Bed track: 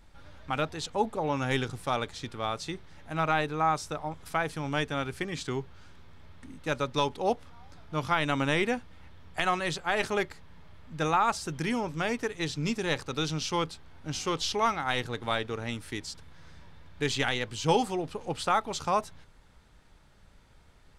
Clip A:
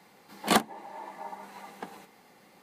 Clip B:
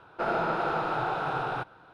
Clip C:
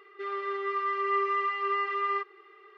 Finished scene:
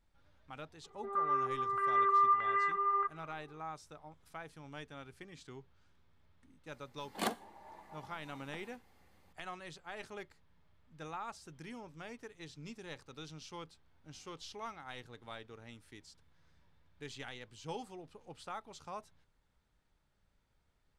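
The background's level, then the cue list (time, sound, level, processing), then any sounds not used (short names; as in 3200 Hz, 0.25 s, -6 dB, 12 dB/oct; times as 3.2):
bed track -18 dB
0.84 add C -8 dB + stepped low-pass 3.2 Hz 830–1700 Hz
6.71 add A -12.5 dB + Schroeder reverb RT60 0.44 s, DRR 18.5 dB
not used: B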